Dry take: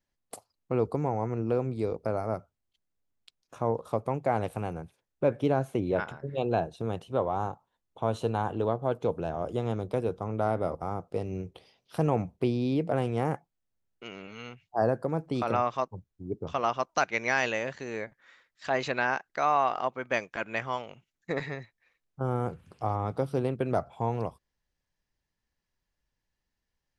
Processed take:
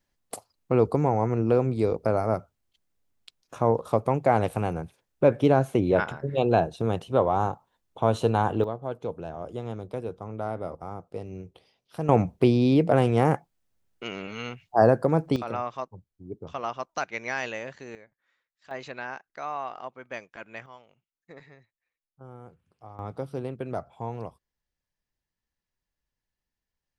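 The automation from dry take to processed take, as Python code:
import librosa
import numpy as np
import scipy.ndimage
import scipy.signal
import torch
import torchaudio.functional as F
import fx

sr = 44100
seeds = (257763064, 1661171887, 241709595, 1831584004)

y = fx.gain(x, sr, db=fx.steps((0.0, 6.0), (8.64, -4.0), (12.09, 7.5), (15.36, -4.0), (17.95, -16.0), (18.71, -8.5), (20.66, -16.0), (22.99, -4.5)))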